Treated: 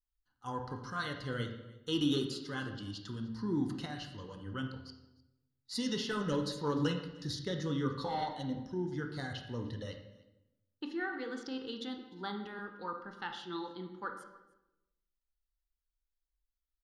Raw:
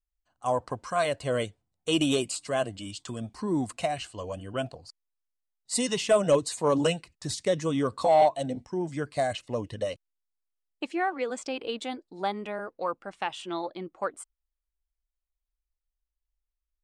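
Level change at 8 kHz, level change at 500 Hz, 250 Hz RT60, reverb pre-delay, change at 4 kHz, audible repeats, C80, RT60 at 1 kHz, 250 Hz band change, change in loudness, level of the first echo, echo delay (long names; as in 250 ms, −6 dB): −15.5 dB, −13.5 dB, 1.2 s, 21 ms, −6.0 dB, 1, 9.0 dB, 0.90 s, −4.5 dB, −9.0 dB, −23.5 dB, 302 ms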